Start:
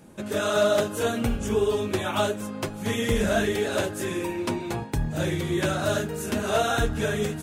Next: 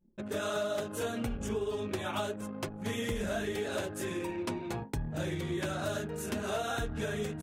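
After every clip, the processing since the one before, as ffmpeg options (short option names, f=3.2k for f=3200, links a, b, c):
-af "anlmdn=1.58,acompressor=threshold=-24dB:ratio=6,volume=-6dB"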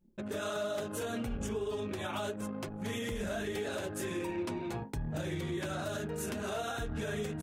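-af "alimiter=level_in=5dB:limit=-24dB:level=0:latency=1:release=95,volume=-5dB,volume=1.5dB"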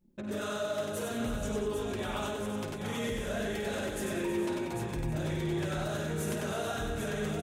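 -filter_complex "[0:a]asplit=2[a][b];[b]aecho=0:1:52|95|187|454|797:0.335|0.668|0.316|0.237|0.501[c];[a][c]amix=inputs=2:normalize=0,asoftclip=type=tanh:threshold=-23dB,asplit=2[d][e];[e]aecho=0:1:320:0.266[f];[d][f]amix=inputs=2:normalize=0"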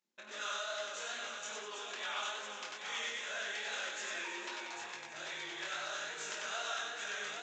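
-af "flanger=delay=19:depth=6.5:speed=2.4,aresample=16000,aresample=44100,highpass=1.3k,volume=5.5dB"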